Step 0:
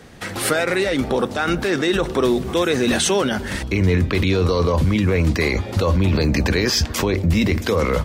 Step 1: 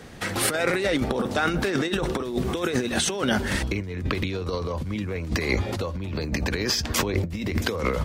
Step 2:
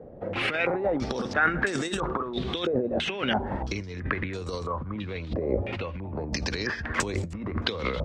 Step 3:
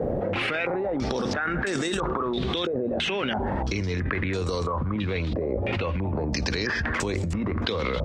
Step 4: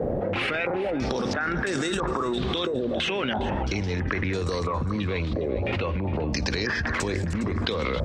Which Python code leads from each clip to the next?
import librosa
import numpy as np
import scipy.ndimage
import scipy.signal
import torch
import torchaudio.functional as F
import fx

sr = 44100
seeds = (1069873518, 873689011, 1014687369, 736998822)

y1 = fx.over_compress(x, sr, threshold_db=-21.0, ratio=-0.5)
y1 = F.gain(torch.from_numpy(y1), -3.5).numpy()
y2 = fx.filter_held_lowpass(y1, sr, hz=3.0, low_hz=570.0, high_hz=7800.0)
y2 = F.gain(torch.from_numpy(y2), -5.0).numpy()
y3 = fx.env_flatten(y2, sr, amount_pct=100)
y3 = F.gain(torch.from_numpy(y3), -7.5).numpy()
y4 = fx.echo_feedback(y3, sr, ms=409, feedback_pct=30, wet_db=-14.5)